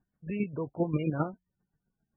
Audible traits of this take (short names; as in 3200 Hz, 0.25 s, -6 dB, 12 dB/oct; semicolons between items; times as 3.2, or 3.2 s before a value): chopped level 7.5 Hz, depth 60%, duty 25%; MP3